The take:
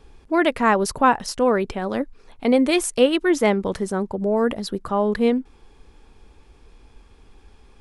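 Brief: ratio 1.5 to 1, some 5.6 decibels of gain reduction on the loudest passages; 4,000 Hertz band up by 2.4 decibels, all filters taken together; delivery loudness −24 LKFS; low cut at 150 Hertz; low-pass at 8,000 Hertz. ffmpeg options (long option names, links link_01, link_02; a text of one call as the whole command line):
ffmpeg -i in.wav -af "highpass=150,lowpass=8000,equalizer=frequency=4000:width_type=o:gain=3.5,acompressor=threshold=-26dB:ratio=1.5,volume=1dB" out.wav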